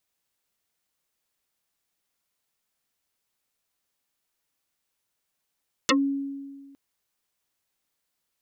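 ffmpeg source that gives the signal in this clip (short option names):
-f lavfi -i "aevalsrc='0.158*pow(10,-3*t/1.62)*sin(2*PI*277*t+11*pow(10,-3*t/0.1)*sin(2*PI*2.87*277*t))':d=0.86:s=44100"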